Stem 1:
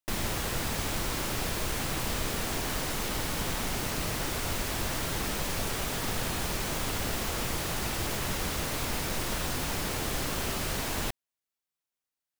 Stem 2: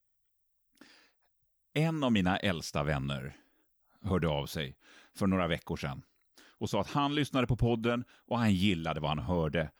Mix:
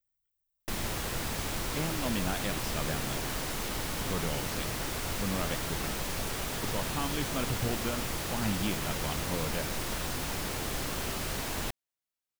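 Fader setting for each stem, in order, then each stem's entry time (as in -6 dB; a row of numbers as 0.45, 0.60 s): -2.5, -5.5 dB; 0.60, 0.00 s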